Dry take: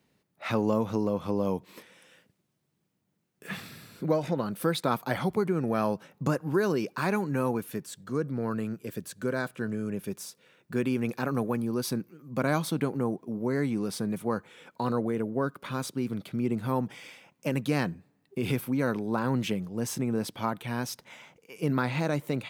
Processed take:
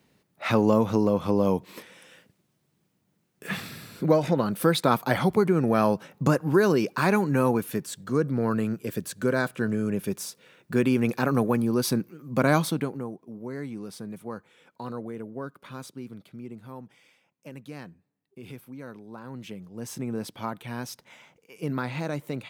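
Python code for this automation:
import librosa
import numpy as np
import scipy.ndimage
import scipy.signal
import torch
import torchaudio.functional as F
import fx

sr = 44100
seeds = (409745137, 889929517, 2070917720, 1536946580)

y = fx.gain(x, sr, db=fx.line((12.6, 5.5), (13.1, -7.0), (15.82, -7.0), (16.73, -13.5), (19.23, -13.5), (20.05, -2.5)))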